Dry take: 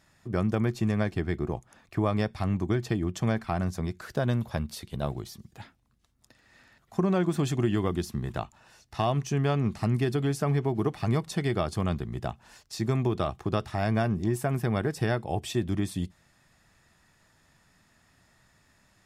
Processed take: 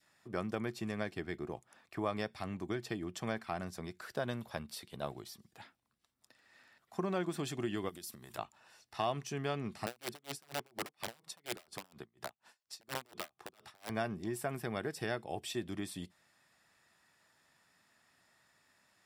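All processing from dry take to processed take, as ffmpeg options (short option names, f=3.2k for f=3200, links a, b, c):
-filter_complex "[0:a]asettb=1/sr,asplit=3[a][b][c];[a]atrim=end=7.894[d];[b]atrim=start=7.89:end=8.38,asetpts=PTS-STARTPTS,afade=t=in:d=0.004:c=qsin,afade=t=out:st=0.486:d=0.004:c=qsin,aemphasis=mode=production:type=75kf,acompressor=threshold=-35dB:ratio=12:attack=3.2:release=140:knee=1:detection=peak[e];[c]atrim=start=8.376[f];[d][e]acrossfade=d=0.004:c1=hsin:c2=qsin[g];[g][f]acrossfade=d=0.004:c1=qsin:c2=hsin,asettb=1/sr,asplit=3[h][i][j];[h]atrim=end=9.864[k];[i]atrim=start=9.86:end=13.9,asetpts=PTS-STARTPTS,afade=t=in:d=0.004:c=qsin,afade=t=out:st=4.036:d=0.004:c=qsin,highpass=f=120:p=1,aeval=exprs='(mod(11.9*val(0)+1,2)-1)/11.9':c=same,aeval=exprs='val(0)*pow(10,-32*(0.5-0.5*cos(2*PI*4.2*n/s))/20)':c=same[l];[j]atrim=start=13.896[m];[k][l]acrossfade=d=0.004:c1=hsin:c2=qsin[n];[n][m]acrossfade=d=0.004:c1=qsin:c2=hsin,highpass=f=470:p=1,adynamicequalizer=threshold=0.00501:dfrequency=990:dqfactor=1.2:tfrequency=990:tqfactor=1.2:attack=5:release=100:ratio=0.375:range=2.5:mode=cutabove:tftype=bell,bandreject=f=6.5k:w=10,volume=-4.5dB"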